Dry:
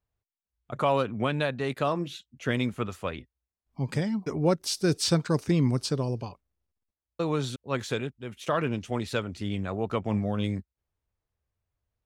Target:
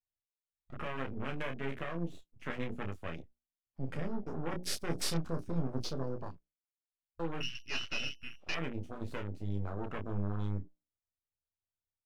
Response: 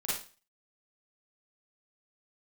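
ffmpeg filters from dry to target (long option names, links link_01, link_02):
-filter_complex "[0:a]aeval=exprs='(tanh(15.8*val(0)+0.45)-tanh(0.45))/15.8':channel_layout=same,bandreject=frequency=60:width_type=h:width=6,bandreject=frequency=120:width_type=h:width=6,bandreject=frequency=180:width_type=h:width=6,bandreject=frequency=240:width_type=h:width=6,bandreject=frequency=300:width_type=h:width=6,bandreject=frequency=360:width_type=h:width=6,bandreject=frequency=420:width_type=h:width=6,acrossover=split=540|1200[link_01][link_02][link_03];[link_02]acompressor=threshold=-47dB:ratio=12[link_04];[link_01][link_04][link_03]amix=inputs=3:normalize=0,asettb=1/sr,asplit=3[link_05][link_06][link_07];[link_05]atrim=end=7.404[link_08];[link_06]atrim=start=7.4:end=8.56,asetpts=PTS-STARTPTS,afade=type=in:duration=0.004:curve=qsin,afade=type=out:start_time=1.156:duration=0.004:curve=qsin,lowpass=frequency=2600:width_type=q:width=0.5098,lowpass=frequency=2600:width_type=q:width=0.6013,lowpass=frequency=2600:width_type=q:width=0.9,lowpass=frequency=2600:width_type=q:width=2.563,afreqshift=-3000[link_09];[link_07]atrim=start=8.556[link_10];[link_08][link_09]acrossfade=duration=0.004:curve1=hsin:curve2=qsin[link_11];[link_11][link_10]acrossfade=duration=0.004:curve1=qsin:curve2=hsin,aeval=exprs='max(val(0),0)':channel_layout=same,aecho=1:1:12|30:0.422|0.501,afwtdn=0.00562,volume=1dB"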